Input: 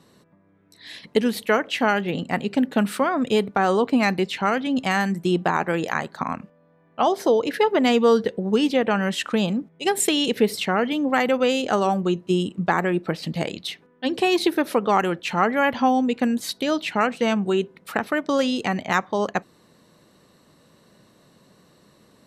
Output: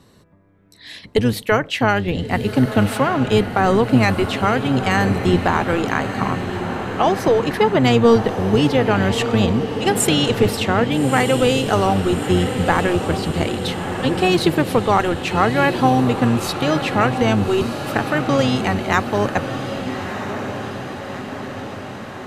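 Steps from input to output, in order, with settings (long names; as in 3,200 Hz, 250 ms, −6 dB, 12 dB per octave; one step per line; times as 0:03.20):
sub-octave generator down 1 octave, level −2 dB
feedback delay with all-pass diffusion 1,276 ms, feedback 64%, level −8.5 dB
level +3 dB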